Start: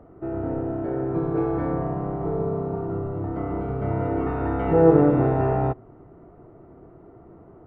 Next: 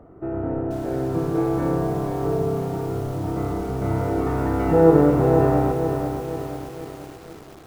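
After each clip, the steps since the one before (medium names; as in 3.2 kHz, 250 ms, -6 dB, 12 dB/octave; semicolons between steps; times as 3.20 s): bit-crushed delay 485 ms, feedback 55%, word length 7-bit, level -6.5 dB; trim +1.5 dB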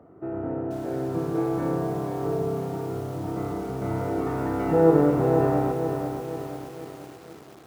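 high-pass 110 Hz 12 dB/octave; trim -3.5 dB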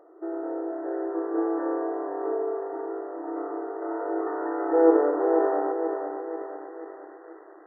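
FFT band-pass 300–2000 Hz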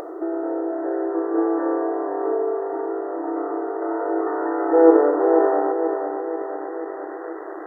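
upward compressor, threshold -27 dBFS; trim +5.5 dB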